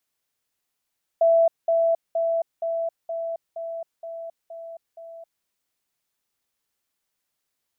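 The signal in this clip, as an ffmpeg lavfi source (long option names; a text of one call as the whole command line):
ffmpeg -f lavfi -i "aevalsrc='pow(10,(-14-3*floor(t/0.47))/20)*sin(2*PI*664*t)*clip(min(mod(t,0.47),0.27-mod(t,0.47))/0.005,0,1)':duration=4.23:sample_rate=44100" out.wav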